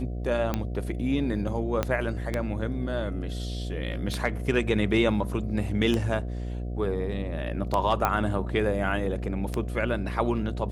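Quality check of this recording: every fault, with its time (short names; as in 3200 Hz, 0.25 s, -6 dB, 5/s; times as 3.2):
buzz 60 Hz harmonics 12 -32 dBFS
tick 33 1/3 rpm -13 dBFS
1.83 pop -11 dBFS
8.05 pop -10 dBFS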